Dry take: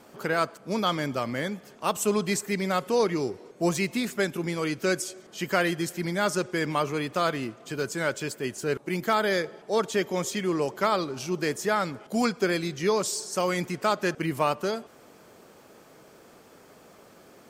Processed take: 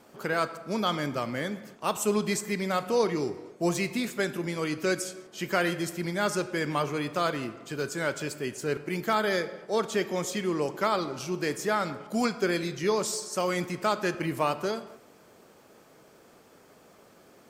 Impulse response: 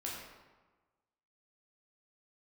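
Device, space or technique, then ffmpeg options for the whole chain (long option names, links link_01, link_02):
keyed gated reverb: -filter_complex "[0:a]asplit=3[link_01][link_02][link_03];[1:a]atrim=start_sample=2205[link_04];[link_02][link_04]afir=irnorm=-1:irlink=0[link_05];[link_03]apad=whole_len=771745[link_06];[link_05][link_06]sidechaingate=range=-33dB:threshold=-49dB:ratio=16:detection=peak,volume=-9.5dB[link_07];[link_01][link_07]amix=inputs=2:normalize=0,volume=-3.5dB"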